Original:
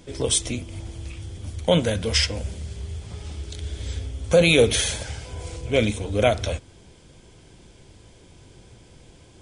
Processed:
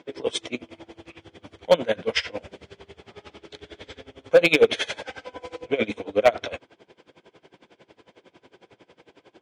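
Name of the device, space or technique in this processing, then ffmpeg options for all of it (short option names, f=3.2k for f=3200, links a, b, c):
helicopter radio: -filter_complex "[0:a]highpass=350,lowpass=2.6k,aeval=exprs='val(0)*pow(10,-23*(0.5-0.5*cos(2*PI*11*n/s))/20)':c=same,asoftclip=type=hard:threshold=-16dB,asettb=1/sr,asplit=3[a][b][c];[a]atrim=end=5.064[d];[b]atrim=start=5.06:end=5.66,asetpts=PTS-STARTPTS,afade=t=in:d=0.004:c=qsin,afade=t=out:st=0.596:d=0.004:c=qsin,aecho=1:1:3.9:0.53,atrim=end_sample=26460[e];[c]atrim=start=5.656[f];[d][e]acrossfade=d=0.004:c1=hsin:c2=qsin[g];[g][f]acrossfade=d=0.004:c1=qsin:c2=hsin,volume=8dB"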